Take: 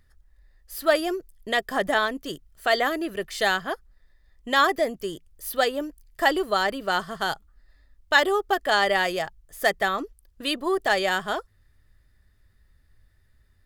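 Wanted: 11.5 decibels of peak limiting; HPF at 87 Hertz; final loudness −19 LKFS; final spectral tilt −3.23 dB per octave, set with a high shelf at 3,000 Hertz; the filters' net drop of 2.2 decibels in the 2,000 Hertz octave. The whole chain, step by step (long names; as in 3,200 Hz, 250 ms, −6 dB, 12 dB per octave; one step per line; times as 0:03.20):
high-pass filter 87 Hz
parametric band 2,000 Hz −4 dB
high-shelf EQ 3,000 Hz +4 dB
level +10.5 dB
brickwall limiter −7.5 dBFS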